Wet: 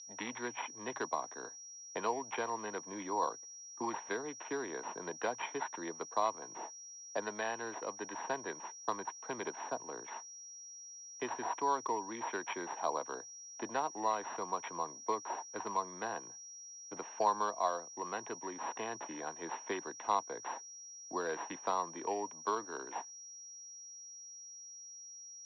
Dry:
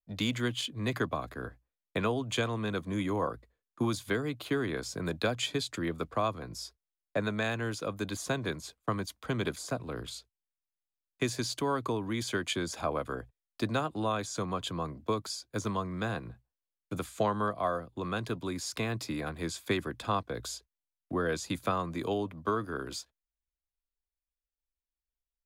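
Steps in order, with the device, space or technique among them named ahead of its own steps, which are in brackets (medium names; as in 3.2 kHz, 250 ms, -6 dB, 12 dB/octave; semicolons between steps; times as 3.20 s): toy sound module (decimation joined by straight lines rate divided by 8×; class-D stage that switches slowly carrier 5.7 kHz; cabinet simulation 530–4200 Hz, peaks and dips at 570 Hz -5 dB, 920 Hz +9 dB, 1.3 kHz -9 dB, 2.1 kHz -5 dB, 4.1 kHz +9 dB)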